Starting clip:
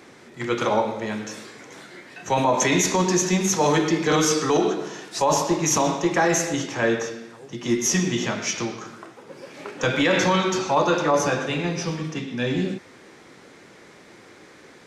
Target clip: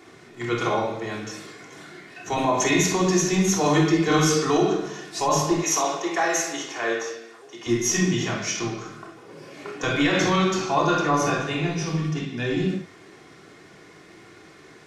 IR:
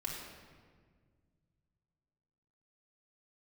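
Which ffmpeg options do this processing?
-filter_complex "[0:a]asettb=1/sr,asplit=3[a][b][c];[a]atrim=end=5.574[d];[b]atrim=start=5.57:end=7.67,asetpts=PTS-STARTPTS,afade=t=in:d=0.004:c=qsin,afade=t=out:st=2.096:d=0.004:c=qsin,highpass=460[e];[c]atrim=start=7.666[f];[d][e]acrossfade=d=0.004:c1=hsin:c2=qsin[g];[g][f]acrossfade=d=0.004:c1=qsin:c2=hsin[h];[1:a]atrim=start_sample=2205,atrim=end_sample=3528[i];[h][i]afir=irnorm=-1:irlink=0"

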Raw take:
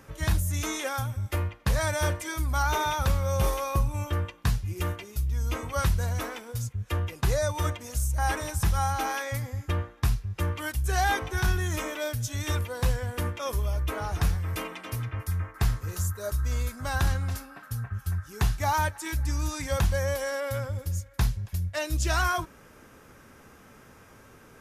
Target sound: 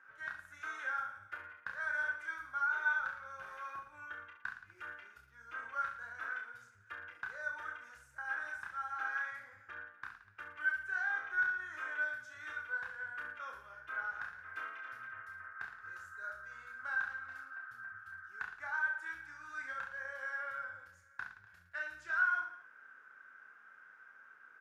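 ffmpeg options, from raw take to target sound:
-af "acompressor=threshold=-26dB:ratio=6,bandpass=f=1.5k:t=q:w=13:csg=0,aecho=1:1:30|67.5|114.4|173|246.2:0.631|0.398|0.251|0.158|0.1,volume=5.5dB"

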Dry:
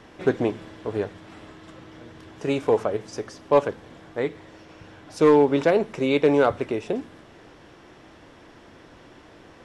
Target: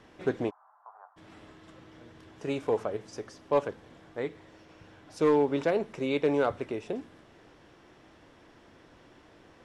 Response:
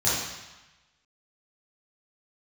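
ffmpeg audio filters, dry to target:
-filter_complex "[0:a]asplit=3[a][b][c];[a]afade=t=out:st=0.49:d=0.02[d];[b]asuperpass=centerf=1000:order=8:qfactor=1.6,afade=t=in:st=0.49:d=0.02,afade=t=out:st=1.16:d=0.02[e];[c]afade=t=in:st=1.16:d=0.02[f];[d][e][f]amix=inputs=3:normalize=0,volume=-7.5dB"

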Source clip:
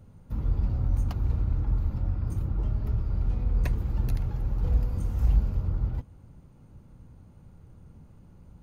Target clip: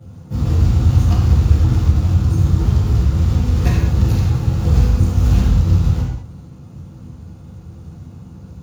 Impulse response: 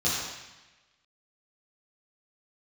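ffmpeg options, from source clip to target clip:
-filter_complex "[0:a]lowshelf=f=98:g=-4.5,acrusher=bits=6:mode=log:mix=0:aa=0.000001[a];[1:a]atrim=start_sample=2205,afade=t=out:st=0.28:d=0.01,atrim=end_sample=12789[b];[a][b]afir=irnorm=-1:irlink=0,volume=2.5dB"

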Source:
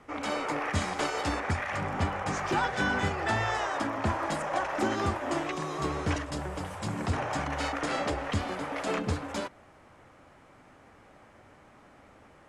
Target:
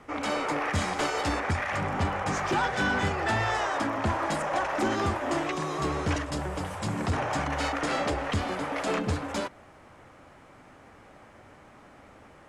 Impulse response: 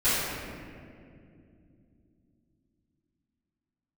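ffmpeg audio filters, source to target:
-af "asoftclip=type=tanh:threshold=-22.5dB,volume=3.5dB"

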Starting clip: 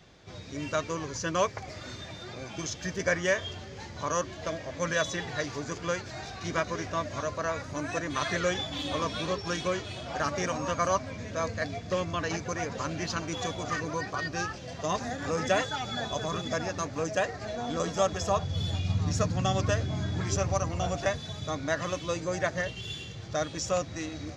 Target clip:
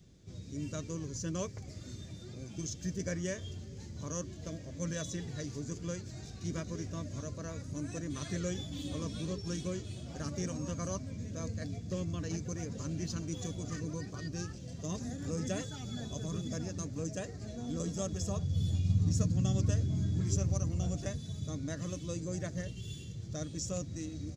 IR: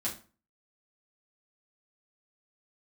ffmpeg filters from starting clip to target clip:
-af "firequalizer=gain_entry='entry(190,0);entry(780,-20);entry(7900,0)':delay=0.05:min_phase=1"

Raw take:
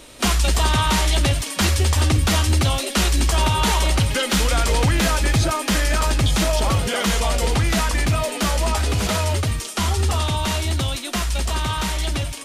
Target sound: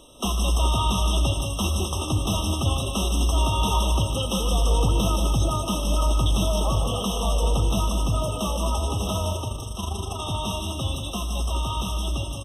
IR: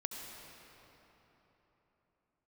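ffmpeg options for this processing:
-filter_complex "[0:a]asplit=3[a][b][c];[a]afade=t=out:st=9.3:d=0.02[d];[b]tremolo=f=25:d=0.667,afade=t=in:st=9.3:d=0.02,afade=t=out:st=10.2:d=0.02[e];[c]afade=t=in:st=10.2:d=0.02[f];[d][e][f]amix=inputs=3:normalize=0,aecho=1:1:151.6|189.5:0.398|0.398,asplit=2[g][h];[1:a]atrim=start_sample=2205,adelay=79[i];[h][i]afir=irnorm=-1:irlink=0,volume=-13.5dB[j];[g][j]amix=inputs=2:normalize=0,afftfilt=real='re*eq(mod(floor(b*sr/1024/1300),2),0)':imag='im*eq(mod(floor(b*sr/1024/1300),2),0)':win_size=1024:overlap=0.75,volume=-5.5dB"

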